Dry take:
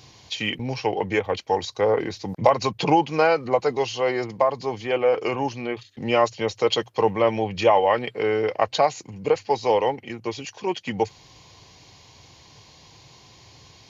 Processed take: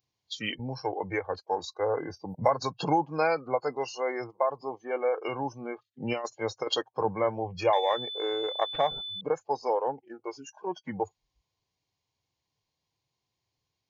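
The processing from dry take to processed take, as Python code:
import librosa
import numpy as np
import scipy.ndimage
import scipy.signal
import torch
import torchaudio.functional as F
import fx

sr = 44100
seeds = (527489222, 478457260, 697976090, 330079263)

y = fx.noise_reduce_blind(x, sr, reduce_db=28)
y = fx.dynamic_eq(y, sr, hz=410.0, q=2.2, threshold_db=-35.0, ratio=4.0, max_db=-3)
y = fx.over_compress(y, sr, threshold_db=-22.0, ratio=-0.5, at=(5.87, 7.04))
y = fx.pwm(y, sr, carrier_hz=3500.0, at=(7.73, 9.21))
y = y * librosa.db_to_amplitude(-6.0)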